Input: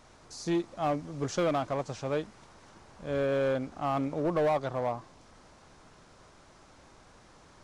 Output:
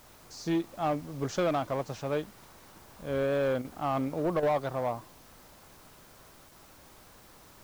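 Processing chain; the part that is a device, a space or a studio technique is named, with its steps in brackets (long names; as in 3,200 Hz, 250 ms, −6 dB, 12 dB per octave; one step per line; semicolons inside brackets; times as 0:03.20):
worn cassette (low-pass filter 6,800 Hz; tape wow and flutter; tape dropouts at 0:03.62/0:04.40/0:06.49, 25 ms −8 dB; white noise bed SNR 26 dB)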